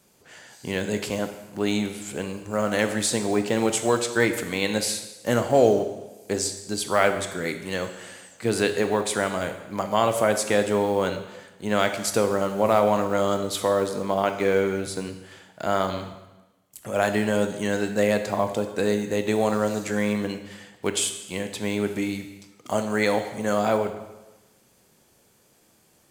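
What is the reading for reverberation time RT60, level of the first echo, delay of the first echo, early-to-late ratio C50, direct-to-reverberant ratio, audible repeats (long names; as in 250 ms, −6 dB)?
1.1 s, no echo audible, no echo audible, 9.5 dB, 7.0 dB, no echo audible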